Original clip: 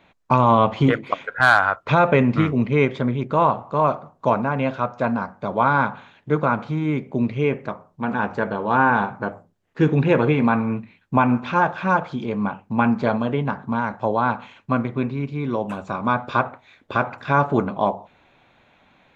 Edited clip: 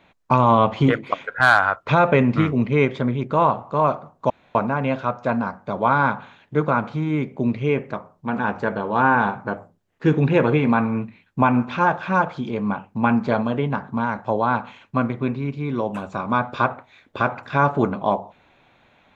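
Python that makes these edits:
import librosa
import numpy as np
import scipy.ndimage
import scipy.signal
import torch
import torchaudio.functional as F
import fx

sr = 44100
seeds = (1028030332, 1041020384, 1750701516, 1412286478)

y = fx.edit(x, sr, fx.insert_room_tone(at_s=4.3, length_s=0.25), tone=tone)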